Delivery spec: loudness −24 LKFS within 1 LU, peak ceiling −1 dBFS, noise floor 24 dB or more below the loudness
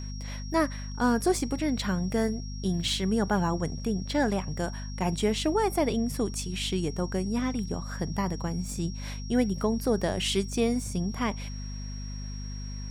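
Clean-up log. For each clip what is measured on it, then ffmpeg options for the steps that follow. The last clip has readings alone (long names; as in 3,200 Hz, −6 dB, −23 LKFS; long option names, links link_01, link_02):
mains hum 50 Hz; hum harmonics up to 250 Hz; level of the hum −34 dBFS; interfering tone 5,600 Hz; level of the tone −45 dBFS; integrated loudness −29.5 LKFS; sample peak −12.0 dBFS; target loudness −24.0 LKFS
→ -af "bandreject=frequency=50:width_type=h:width=4,bandreject=frequency=100:width_type=h:width=4,bandreject=frequency=150:width_type=h:width=4,bandreject=frequency=200:width_type=h:width=4,bandreject=frequency=250:width_type=h:width=4"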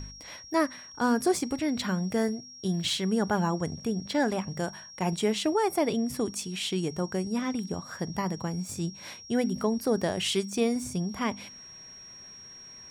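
mains hum none found; interfering tone 5,600 Hz; level of the tone −45 dBFS
→ -af "bandreject=frequency=5600:width=30"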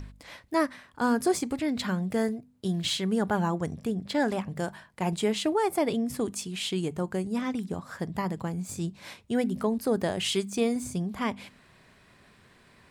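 interfering tone none found; integrated loudness −29.5 LKFS; sample peak −13.0 dBFS; target loudness −24.0 LKFS
→ -af "volume=5.5dB"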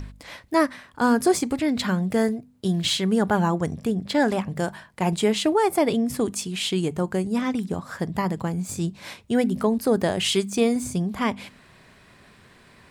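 integrated loudness −24.0 LKFS; sample peak −7.5 dBFS; background noise floor −53 dBFS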